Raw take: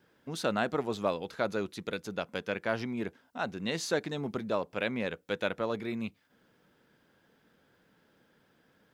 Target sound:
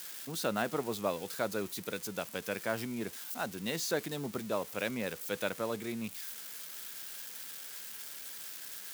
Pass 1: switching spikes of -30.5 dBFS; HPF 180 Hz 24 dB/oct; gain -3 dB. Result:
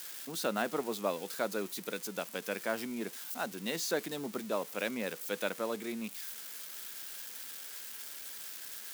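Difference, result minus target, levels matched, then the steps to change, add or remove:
125 Hz band -5.5 dB
change: HPF 81 Hz 24 dB/oct

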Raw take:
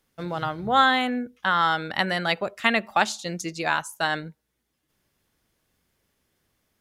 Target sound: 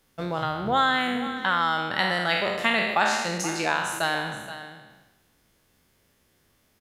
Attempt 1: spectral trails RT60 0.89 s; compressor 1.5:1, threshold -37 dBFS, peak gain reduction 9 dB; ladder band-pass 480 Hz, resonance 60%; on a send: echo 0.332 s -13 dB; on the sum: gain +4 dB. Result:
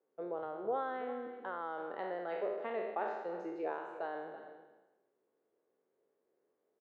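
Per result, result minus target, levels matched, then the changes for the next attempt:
500 Hz band +8.0 dB; echo 0.143 s early
remove: ladder band-pass 480 Hz, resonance 60%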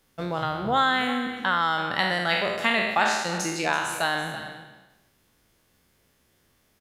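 echo 0.143 s early
change: echo 0.475 s -13 dB

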